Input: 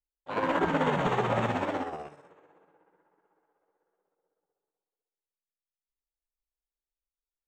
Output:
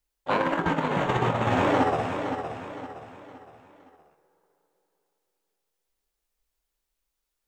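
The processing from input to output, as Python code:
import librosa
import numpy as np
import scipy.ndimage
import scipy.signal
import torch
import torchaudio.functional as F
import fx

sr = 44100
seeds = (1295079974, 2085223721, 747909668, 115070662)

y = fx.over_compress(x, sr, threshold_db=-31.0, ratio=-0.5)
y = fx.doubler(y, sr, ms=24.0, db=-12)
y = fx.echo_feedback(y, sr, ms=515, feedback_pct=39, wet_db=-8.0)
y = F.gain(torch.from_numpy(y), 7.5).numpy()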